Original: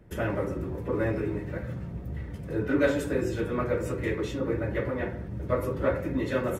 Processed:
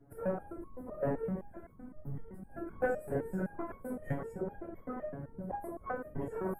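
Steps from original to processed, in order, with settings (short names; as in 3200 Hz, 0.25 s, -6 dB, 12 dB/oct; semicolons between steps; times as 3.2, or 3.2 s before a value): Chebyshev band-stop 1200–9500 Hz, order 2; formant-preserving pitch shift +8.5 st; whisperiser; stepped resonator 7.8 Hz 140–1100 Hz; gain +7 dB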